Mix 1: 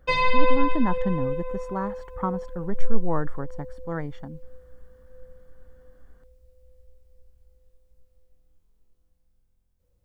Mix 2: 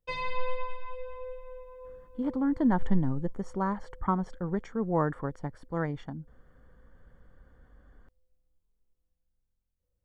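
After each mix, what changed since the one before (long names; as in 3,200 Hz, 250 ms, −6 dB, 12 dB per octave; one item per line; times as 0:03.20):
speech: entry +1.85 s
background −12.0 dB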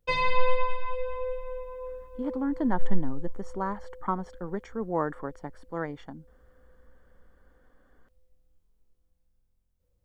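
speech: add high-pass filter 230 Hz 12 dB per octave
background +8.0 dB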